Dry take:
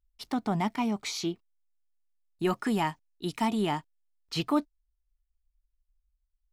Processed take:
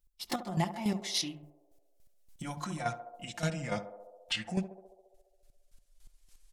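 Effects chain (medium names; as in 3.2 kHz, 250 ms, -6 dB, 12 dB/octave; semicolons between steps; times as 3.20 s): pitch bend over the whole clip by -11 st starting unshifted; recorder AGC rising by 13 dB/s; treble shelf 3.5 kHz +11 dB; comb 5.7 ms, depth 71%; peak limiter -20 dBFS, peak gain reduction 7.5 dB; hum notches 50/100/150/200 Hz; square tremolo 3.5 Hz, depth 65%, duty 25%; band-passed feedback delay 69 ms, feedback 79%, band-pass 560 Hz, level -10 dB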